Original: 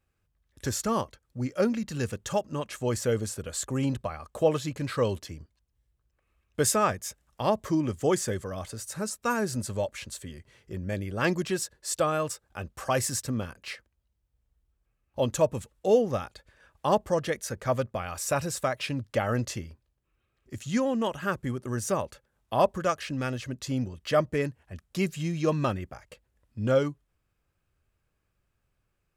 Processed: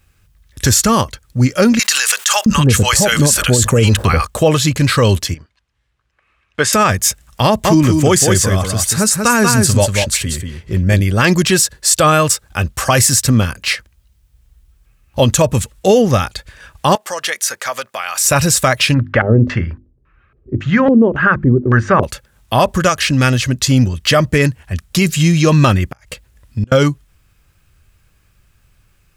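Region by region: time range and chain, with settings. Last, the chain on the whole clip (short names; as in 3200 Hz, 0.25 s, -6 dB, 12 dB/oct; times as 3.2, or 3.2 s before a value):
1.79–4.25 bands offset in time highs, lows 0.67 s, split 870 Hz + fast leveller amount 50%
5.34–6.73 LPF 1600 Hz + tilt +4.5 dB/oct
7.46–11.01 echo 0.188 s -5 dB + mismatched tape noise reduction decoder only
16.95–18.24 HPF 750 Hz + compressor 2:1, threshold -38 dBFS
18.94–22.03 notches 50/100/150/200/250/300/350 Hz + LFO low-pass square 1.8 Hz 400–1600 Hz + LPF 7200 Hz
25.88–26.72 compressor 2.5:1, threshold -34 dBFS + flipped gate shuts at -29 dBFS, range -28 dB
whole clip: bell 500 Hz -9.5 dB 2.9 oct; maximiser +24.5 dB; gain -1 dB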